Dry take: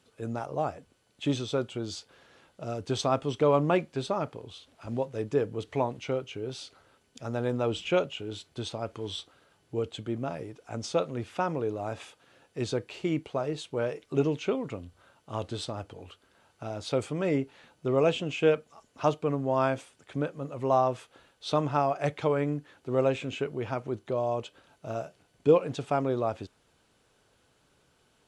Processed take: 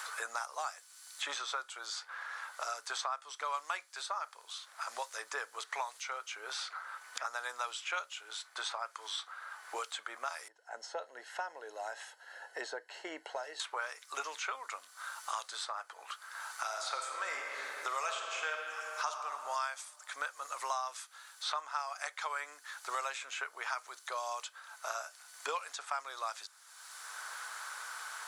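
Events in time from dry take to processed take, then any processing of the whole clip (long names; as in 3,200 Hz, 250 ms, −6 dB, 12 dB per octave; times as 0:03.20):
0:10.48–0:13.60: moving average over 37 samples
0:16.64–0:19.09: thrown reverb, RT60 1.7 s, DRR 2 dB
whole clip: high-pass filter 1,200 Hz 24 dB per octave; parametric band 2,800 Hz −15 dB 0.89 octaves; multiband upward and downward compressor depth 100%; level +7.5 dB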